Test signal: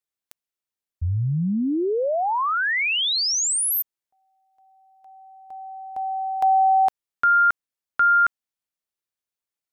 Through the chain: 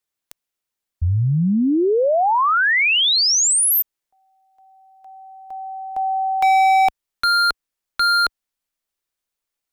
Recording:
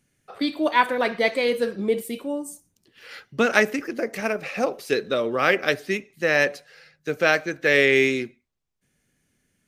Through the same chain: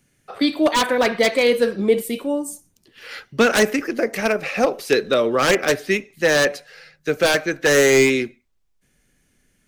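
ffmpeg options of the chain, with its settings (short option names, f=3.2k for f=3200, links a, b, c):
-filter_complex "[0:a]asubboost=boost=3:cutoff=53,acrossover=split=470|5800[a][b][c];[b]aeval=exprs='0.126*(abs(mod(val(0)/0.126+3,4)-2)-1)':c=same[d];[a][d][c]amix=inputs=3:normalize=0,volume=6dB"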